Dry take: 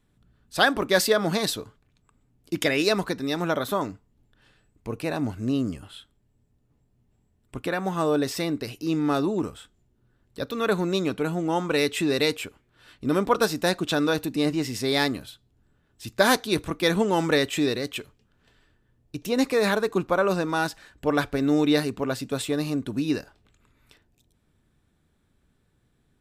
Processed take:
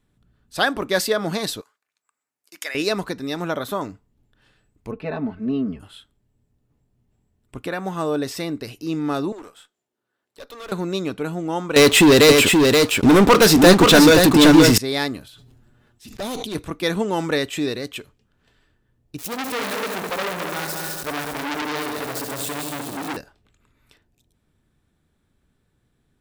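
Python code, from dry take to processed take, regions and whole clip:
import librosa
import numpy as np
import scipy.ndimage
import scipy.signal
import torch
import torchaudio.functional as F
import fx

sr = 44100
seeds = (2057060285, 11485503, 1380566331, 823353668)

y = fx.chain(x, sr, fx.bessel_highpass(hz=1500.0, order=2),
    fx.peak_eq(hz=3300.0, db=-8.0, octaves=0.75), at=(1.61, 2.75))
y = fx.chain(y, sr, fx.air_absorb(metres=380.0),
    fx.comb(ms=4.6, depth=0.89), at=(4.91, 5.8))
y = fx.chain(y, sr, fx.highpass(hz=500.0, slope=12),
    fx.tube_stage(drive_db=33.0, bias=0.55), at=(9.32, 10.72))
y = fx.chain(y, sr, fx.leveller(passes=5),
    fx.echo_single(ms=527, db=-3.5), at=(11.76, 14.78))
y = fx.chain(y, sr, fx.env_flanger(rest_ms=8.6, full_db=-20.0),
    fx.tube_stage(drive_db=25.0, bias=0.45),
    fx.sustainer(db_per_s=23.0), at=(15.28, 16.55))
y = fx.chain(y, sr, fx.crossing_spikes(level_db=-21.5),
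    fx.echo_heads(ms=69, heads='first and third', feedback_pct=64, wet_db=-6.5),
    fx.transformer_sat(knee_hz=3500.0), at=(19.18, 23.17))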